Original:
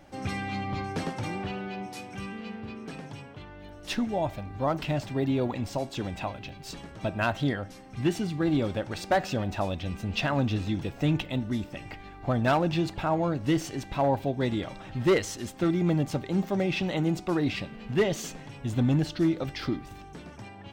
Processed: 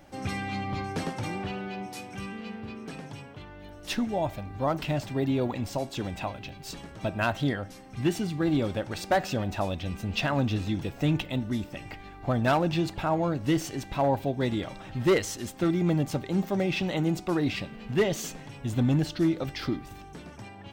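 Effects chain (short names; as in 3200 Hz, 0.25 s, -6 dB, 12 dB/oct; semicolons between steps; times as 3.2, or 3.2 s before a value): high shelf 10000 Hz +6.5 dB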